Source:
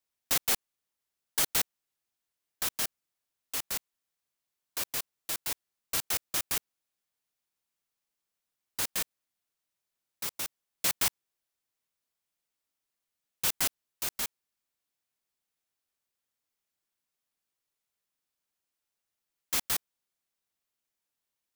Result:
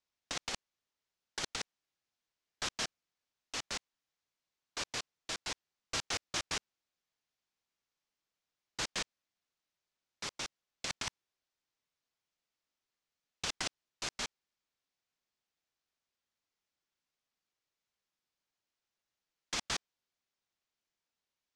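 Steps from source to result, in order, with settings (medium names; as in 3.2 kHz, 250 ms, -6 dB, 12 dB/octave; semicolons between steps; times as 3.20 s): low-pass 6.6 kHz 24 dB/octave; compressor with a negative ratio -33 dBFS, ratio -0.5; trim -1.5 dB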